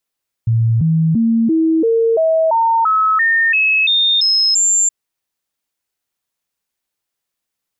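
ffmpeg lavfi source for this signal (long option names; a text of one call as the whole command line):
ffmpeg -f lavfi -i "aevalsrc='0.299*clip(min(mod(t,0.34),0.34-mod(t,0.34))/0.005,0,1)*sin(2*PI*114*pow(2,floor(t/0.34)/2)*mod(t,0.34))':duration=4.42:sample_rate=44100" out.wav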